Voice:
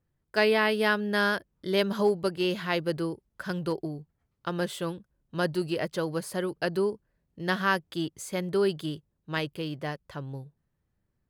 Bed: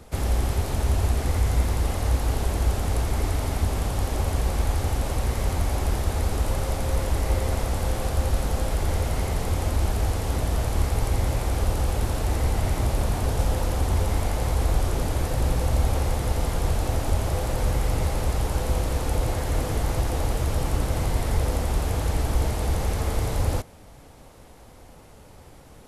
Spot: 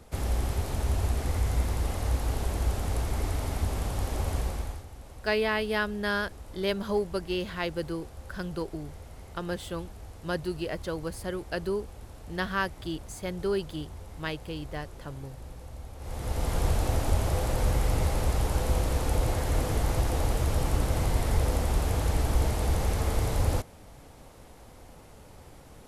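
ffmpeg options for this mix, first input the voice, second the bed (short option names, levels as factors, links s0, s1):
-filter_complex "[0:a]adelay=4900,volume=0.668[s0];[1:a]volume=4.73,afade=t=out:st=4.37:d=0.48:silence=0.16788,afade=t=in:st=15.98:d=0.61:silence=0.11885[s1];[s0][s1]amix=inputs=2:normalize=0"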